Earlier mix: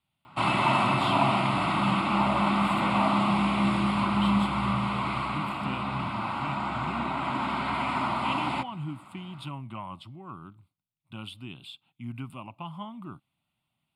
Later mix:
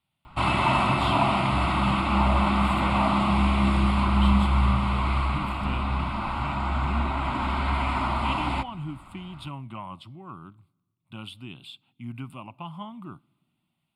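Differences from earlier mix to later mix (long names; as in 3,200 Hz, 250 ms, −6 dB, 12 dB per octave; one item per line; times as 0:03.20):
background: remove high-pass filter 120 Hz 24 dB per octave
reverb: on, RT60 1.4 s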